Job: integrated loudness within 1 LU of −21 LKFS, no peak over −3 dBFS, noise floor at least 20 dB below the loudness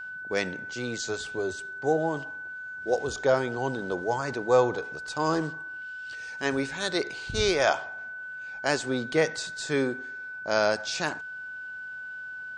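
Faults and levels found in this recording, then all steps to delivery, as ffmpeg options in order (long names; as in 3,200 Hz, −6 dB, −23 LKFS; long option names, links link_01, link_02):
interfering tone 1,500 Hz; level of the tone −36 dBFS; integrated loudness −29.0 LKFS; sample peak −9.0 dBFS; target loudness −21.0 LKFS
→ -af "bandreject=frequency=1500:width=30"
-af "volume=8dB,alimiter=limit=-3dB:level=0:latency=1"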